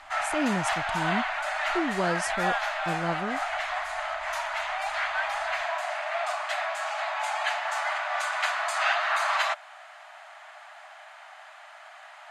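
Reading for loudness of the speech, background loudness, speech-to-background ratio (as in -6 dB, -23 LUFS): -32.5 LUFS, -28.5 LUFS, -4.0 dB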